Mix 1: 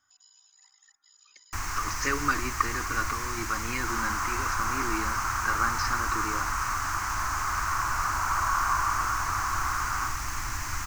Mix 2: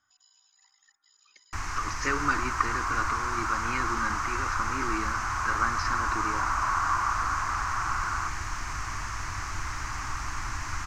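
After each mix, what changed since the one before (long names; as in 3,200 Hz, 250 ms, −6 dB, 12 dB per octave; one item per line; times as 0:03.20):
second sound: entry −1.80 s
master: add high-frequency loss of the air 66 metres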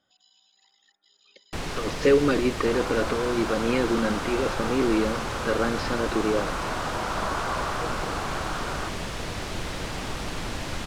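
speech: add high-shelf EQ 6,200 Hz −8.5 dB
second sound: entry +0.60 s
master: remove drawn EQ curve 100 Hz 0 dB, 180 Hz −16 dB, 320 Hz −10 dB, 500 Hz −24 dB, 1,100 Hz +6 dB, 2,200 Hz −1 dB, 3,500 Hz −14 dB, 6,300 Hz +4 dB, 9,700 Hz −10 dB, 14,000 Hz −7 dB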